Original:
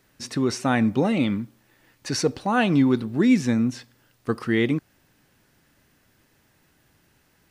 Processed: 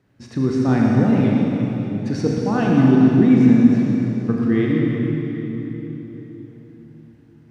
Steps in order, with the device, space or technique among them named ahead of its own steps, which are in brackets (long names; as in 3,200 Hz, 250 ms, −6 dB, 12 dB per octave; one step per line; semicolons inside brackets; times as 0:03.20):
mains-hum notches 50/100/150/200 Hz
tunnel (flutter between parallel walls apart 6.6 metres, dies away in 0.28 s; convolution reverb RT60 3.9 s, pre-delay 61 ms, DRR −2 dB)
high-pass filter 100 Hz
RIAA equalisation playback
level −4.5 dB